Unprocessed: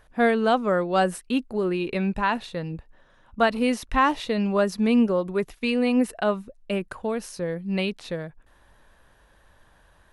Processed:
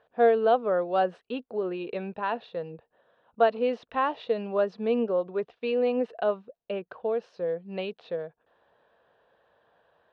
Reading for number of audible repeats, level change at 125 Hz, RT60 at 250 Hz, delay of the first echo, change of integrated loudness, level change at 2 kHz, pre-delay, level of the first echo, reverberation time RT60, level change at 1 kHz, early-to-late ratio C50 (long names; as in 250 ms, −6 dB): no echo audible, below −10 dB, no reverb audible, no echo audible, −3.5 dB, −9.0 dB, no reverb audible, no echo audible, no reverb audible, −3.5 dB, no reverb audible